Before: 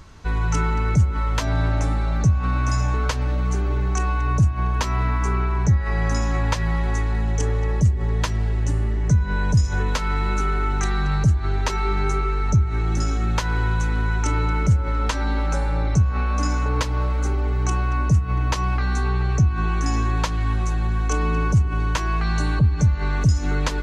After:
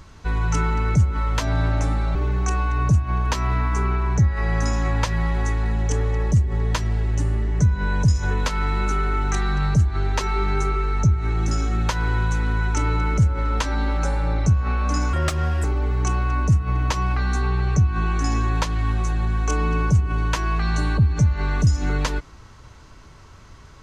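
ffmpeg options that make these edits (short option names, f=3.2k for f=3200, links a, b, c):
-filter_complex "[0:a]asplit=4[a][b][c][d];[a]atrim=end=2.152[e];[b]atrim=start=3.638:end=16.624[f];[c]atrim=start=16.62:end=17.26,asetpts=PTS-STARTPTS,asetrate=55125,aresample=44100,atrim=end_sample=22579,asetpts=PTS-STARTPTS[g];[d]atrim=start=17.256[h];[e][f]acrossfade=d=0.004:c1=hsin:c2=hsin[i];[i][g]acrossfade=d=0.004:c1=hsin:c2=hsin[j];[j][h]acrossfade=d=0.004:c1=hsin:c2=hsin"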